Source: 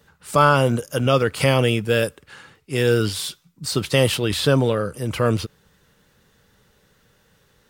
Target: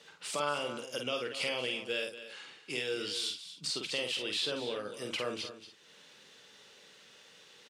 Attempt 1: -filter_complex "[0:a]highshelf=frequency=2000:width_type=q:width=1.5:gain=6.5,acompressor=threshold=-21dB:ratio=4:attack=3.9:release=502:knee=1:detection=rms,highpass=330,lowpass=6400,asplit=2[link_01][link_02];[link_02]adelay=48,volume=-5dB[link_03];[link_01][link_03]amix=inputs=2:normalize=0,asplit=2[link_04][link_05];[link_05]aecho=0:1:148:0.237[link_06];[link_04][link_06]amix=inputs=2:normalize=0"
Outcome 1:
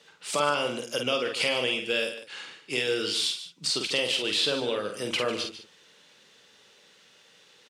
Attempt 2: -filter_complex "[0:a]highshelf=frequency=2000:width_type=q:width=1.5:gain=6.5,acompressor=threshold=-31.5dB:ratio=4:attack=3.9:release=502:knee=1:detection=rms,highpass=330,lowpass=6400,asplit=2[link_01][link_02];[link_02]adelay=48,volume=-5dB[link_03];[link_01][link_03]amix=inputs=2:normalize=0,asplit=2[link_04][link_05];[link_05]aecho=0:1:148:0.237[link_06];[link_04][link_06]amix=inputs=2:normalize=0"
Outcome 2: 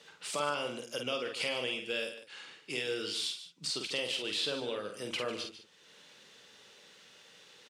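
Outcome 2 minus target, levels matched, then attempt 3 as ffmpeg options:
echo 85 ms early
-filter_complex "[0:a]highshelf=frequency=2000:width_type=q:width=1.5:gain=6.5,acompressor=threshold=-31.5dB:ratio=4:attack=3.9:release=502:knee=1:detection=rms,highpass=330,lowpass=6400,asplit=2[link_01][link_02];[link_02]adelay=48,volume=-5dB[link_03];[link_01][link_03]amix=inputs=2:normalize=0,asplit=2[link_04][link_05];[link_05]aecho=0:1:233:0.237[link_06];[link_04][link_06]amix=inputs=2:normalize=0"

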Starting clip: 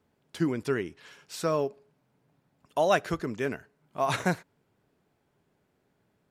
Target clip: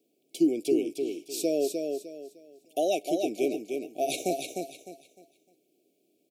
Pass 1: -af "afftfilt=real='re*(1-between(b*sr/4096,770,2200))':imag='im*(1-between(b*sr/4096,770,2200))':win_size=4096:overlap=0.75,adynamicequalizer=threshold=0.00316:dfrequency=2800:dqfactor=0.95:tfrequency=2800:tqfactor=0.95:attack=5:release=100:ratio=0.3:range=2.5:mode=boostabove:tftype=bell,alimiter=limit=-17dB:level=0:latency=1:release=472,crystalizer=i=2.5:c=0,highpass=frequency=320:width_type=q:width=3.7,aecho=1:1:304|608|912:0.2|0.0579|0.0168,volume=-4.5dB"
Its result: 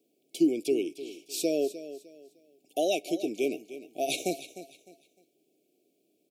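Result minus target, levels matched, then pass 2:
echo-to-direct −9 dB; 2,000 Hz band +2.5 dB
-af "afftfilt=real='re*(1-between(b*sr/4096,770,2200))':imag='im*(1-between(b*sr/4096,770,2200))':win_size=4096:overlap=0.75,adynamicequalizer=threshold=0.00316:dfrequency=1100:dqfactor=0.95:tfrequency=1100:tqfactor=0.95:attack=5:release=100:ratio=0.3:range=2.5:mode=boostabove:tftype=bell,alimiter=limit=-17dB:level=0:latency=1:release=472,crystalizer=i=2.5:c=0,highpass=frequency=320:width_type=q:width=3.7,aecho=1:1:304|608|912|1216:0.562|0.163|0.0473|0.0137,volume=-4.5dB"

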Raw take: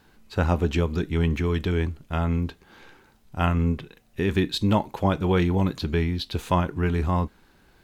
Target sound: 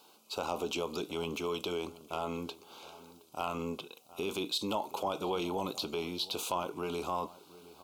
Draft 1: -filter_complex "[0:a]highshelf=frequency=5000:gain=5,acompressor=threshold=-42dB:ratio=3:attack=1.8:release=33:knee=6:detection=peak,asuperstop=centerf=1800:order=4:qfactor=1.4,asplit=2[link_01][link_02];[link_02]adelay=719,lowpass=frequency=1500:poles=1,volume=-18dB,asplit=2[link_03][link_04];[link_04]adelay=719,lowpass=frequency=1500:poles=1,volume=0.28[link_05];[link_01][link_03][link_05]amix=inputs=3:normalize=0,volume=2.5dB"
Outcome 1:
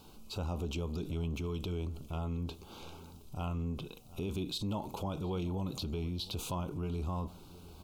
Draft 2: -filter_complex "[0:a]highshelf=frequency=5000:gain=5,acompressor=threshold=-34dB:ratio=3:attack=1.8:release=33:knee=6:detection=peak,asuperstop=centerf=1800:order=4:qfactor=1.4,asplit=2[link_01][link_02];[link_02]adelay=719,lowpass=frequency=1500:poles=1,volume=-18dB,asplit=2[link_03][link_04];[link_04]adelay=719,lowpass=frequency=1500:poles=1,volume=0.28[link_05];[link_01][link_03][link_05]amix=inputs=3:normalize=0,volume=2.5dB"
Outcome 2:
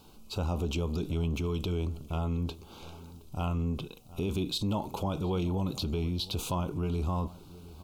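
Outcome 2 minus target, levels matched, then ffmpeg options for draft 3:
500 Hz band −4.0 dB
-filter_complex "[0:a]highpass=480,highshelf=frequency=5000:gain=5,acompressor=threshold=-34dB:ratio=3:attack=1.8:release=33:knee=6:detection=peak,asuperstop=centerf=1800:order=4:qfactor=1.4,asplit=2[link_01][link_02];[link_02]adelay=719,lowpass=frequency=1500:poles=1,volume=-18dB,asplit=2[link_03][link_04];[link_04]adelay=719,lowpass=frequency=1500:poles=1,volume=0.28[link_05];[link_01][link_03][link_05]amix=inputs=3:normalize=0,volume=2.5dB"

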